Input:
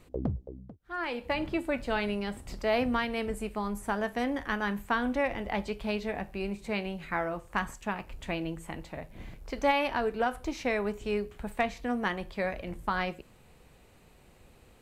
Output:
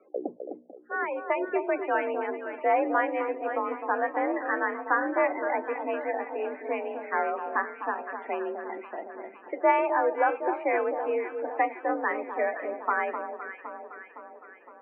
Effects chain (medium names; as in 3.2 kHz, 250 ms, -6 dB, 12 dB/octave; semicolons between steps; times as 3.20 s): loudest bins only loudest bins 32; echo whose repeats swap between lows and highs 256 ms, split 1.2 kHz, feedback 73%, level -7 dB; mistuned SSB +51 Hz 290–2100 Hz; trim +4.5 dB